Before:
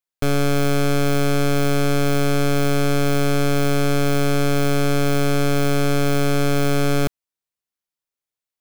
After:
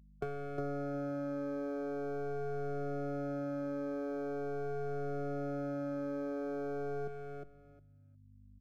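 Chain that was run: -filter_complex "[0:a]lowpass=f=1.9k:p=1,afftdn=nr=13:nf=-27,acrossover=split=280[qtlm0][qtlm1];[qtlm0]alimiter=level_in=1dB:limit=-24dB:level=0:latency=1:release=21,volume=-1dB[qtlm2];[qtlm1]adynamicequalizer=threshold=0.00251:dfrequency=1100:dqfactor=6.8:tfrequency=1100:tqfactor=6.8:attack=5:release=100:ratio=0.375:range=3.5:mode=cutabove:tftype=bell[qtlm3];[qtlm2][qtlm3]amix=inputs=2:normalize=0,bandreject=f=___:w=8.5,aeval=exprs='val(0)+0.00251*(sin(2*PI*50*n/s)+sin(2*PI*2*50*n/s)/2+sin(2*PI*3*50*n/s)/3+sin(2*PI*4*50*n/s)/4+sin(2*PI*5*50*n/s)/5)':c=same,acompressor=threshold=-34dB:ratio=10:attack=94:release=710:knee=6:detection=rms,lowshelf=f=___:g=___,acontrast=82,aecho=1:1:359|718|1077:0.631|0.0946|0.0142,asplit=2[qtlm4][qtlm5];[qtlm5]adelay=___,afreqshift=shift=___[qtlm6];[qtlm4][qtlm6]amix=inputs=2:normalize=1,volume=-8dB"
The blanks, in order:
990, 140, -5.5, 2.2, -0.43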